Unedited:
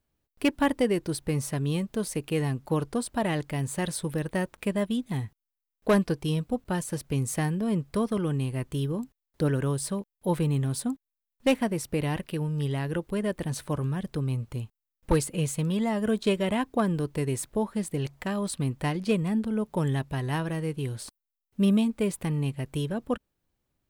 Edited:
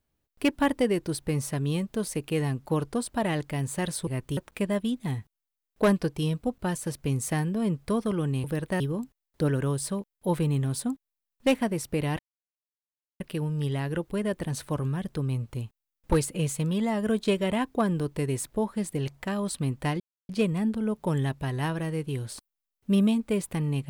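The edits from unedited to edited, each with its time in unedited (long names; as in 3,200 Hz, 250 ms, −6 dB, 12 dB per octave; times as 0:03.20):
0:04.07–0:04.43: swap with 0:08.50–0:08.80
0:12.19: splice in silence 1.01 s
0:18.99: splice in silence 0.29 s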